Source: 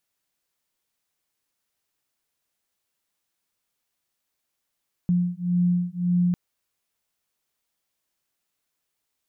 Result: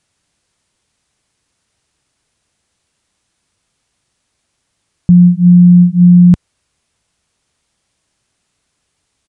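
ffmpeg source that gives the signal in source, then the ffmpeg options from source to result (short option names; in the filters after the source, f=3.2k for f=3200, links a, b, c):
-f lavfi -i "aevalsrc='0.0708*(sin(2*PI*176*t)+sin(2*PI*177.8*t))':d=1.25:s=44100"
-af "equalizer=f=78:t=o:w=2.8:g=11,aresample=22050,aresample=44100,alimiter=level_in=14.5dB:limit=-1dB:release=50:level=0:latency=1"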